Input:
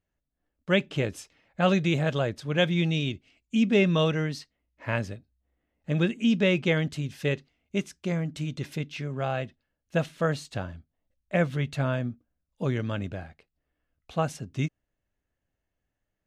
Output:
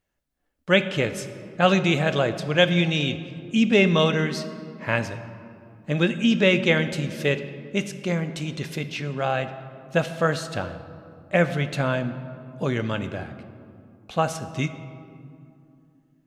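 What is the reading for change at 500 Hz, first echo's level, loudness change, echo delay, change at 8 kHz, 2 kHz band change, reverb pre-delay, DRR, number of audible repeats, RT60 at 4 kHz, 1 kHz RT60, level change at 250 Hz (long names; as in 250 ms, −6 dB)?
+5.0 dB, no echo audible, +4.0 dB, no echo audible, +6.5 dB, +7.0 dB, 4 ms, 9.5 dB, no echo audible, 1.3 s, 2.4 s, +3.0 dB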